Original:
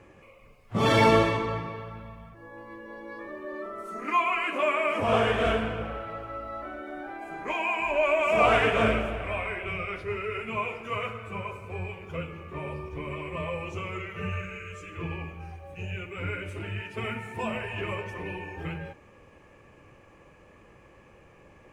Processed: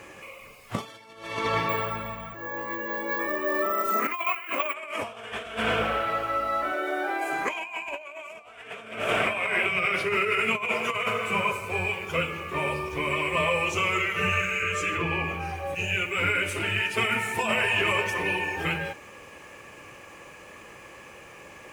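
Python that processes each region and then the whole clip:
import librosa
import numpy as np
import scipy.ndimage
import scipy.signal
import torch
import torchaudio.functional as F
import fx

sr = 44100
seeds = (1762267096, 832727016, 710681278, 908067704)

y = fx.chain(x, sr, fx.high_shelf(hz=4600.0, db=-8.0),
    fx.over_compress(threshold_db=-30.0, ratio=-0.5),
    fx.resample_bad(factor=2, down='filtered', up='hold'), at=(1.69, 4.74))
y = fx.chain(y, sr, fx.highpass(hz=100.0, slope=12),
    fx.low_shelf_res(hz=290.0, db=-7.0, q=3.0), at=(6.72, 7.33))
y = fx.chain(y, sr, fx.highpass_res(hz=140.0, q=1.5),
    fx.echo_alternate(ms=157, hz=860.0, feedback_pct=54, wet_db=-9), at=(8.68, 11.52))
y = fx.chain(y, sr, fx.highpass(hz=45.0, slope=12),
    fx.high_shelf(hz=3400.0, db=-9.0),
    fx.env_flatten(amount_pct=50), at=(14.62, 15.75))
y = fx.tilt_eq(y, sr, slope=3.0)
y = fx.over_compress(y, sr, threshold_db=-33.0, ratio=-0.5)
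y = F.gain(torch.from_numpy(y), 6.0).numpy()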